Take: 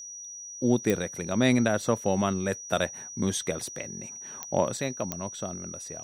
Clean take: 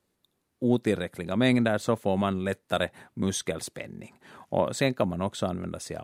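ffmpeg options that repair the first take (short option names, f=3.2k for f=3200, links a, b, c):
-af "adeclick=t=4,bandreject=f=5.8k:w=30,asetnsamples=n=441:p=0,asendcmd='4.77 volume volume 6.5dB',volume=0dB"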